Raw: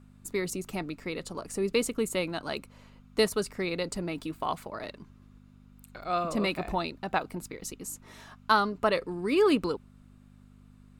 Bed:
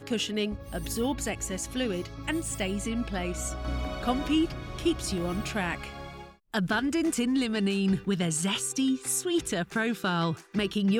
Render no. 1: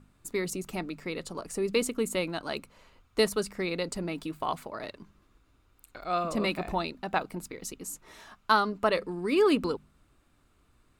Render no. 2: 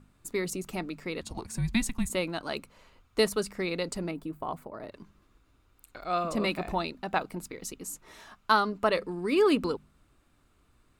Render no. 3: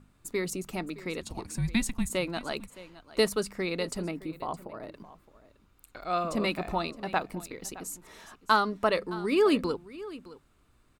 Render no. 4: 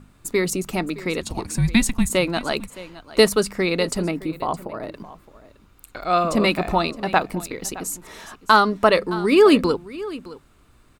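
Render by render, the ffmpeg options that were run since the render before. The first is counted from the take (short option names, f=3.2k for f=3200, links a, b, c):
-af "bandreject=f=50:t=h:w=4,bandreject=f=100:t=h:w=4,bandreject=f=150:t=h:w=4,bandreject=f=200:t=h:w=4,bandreject=f=250:t=h:w=4"
-filter_complex "[0:a]asettb=1/sr,asplit=3[a][b][c];[a]atrim=end=1.214[d];[b]atrim=start=1.21:end=2.1,asetpts=PTS-STARTPTS,afade=t=in:d=0.004:c=qsin,afade=t=out:st=0.886:d=0.004:c=qsin,afreqshift=-240[e];[c]atrim=start=2.096[f];[d][e]acrossfade=d=0.004:c1=hsin:c2=qsin[g];[g][f]acrossfade=d=0.004:c1=qsin:c2=hsin,asettb=1/sr,asplit=3[h][i][j];[h]atrim=end=4.114[k];[i]atrim=start=4.11:end=4.92,asetpts=PTS-STARTPTS,afade=t=in:d=0.004:c=qsin,afade=t=out:st=0.806:d=0.004:c=qsin,equalizer=f=4.3k:w=0.37:g=-14.5[l];[j]atrim=start=4.916[m];[k][l]acrossfade=d=0.004:c1=hsin:c2=qsin[n];[n][m]acrossfade=d=0.004:c1=qsin:c2=hsin"
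-af "aecho=1:1:616:0.133"
-af "volume=10dB,alimiter=limit=-2dB:level=0:latency=1"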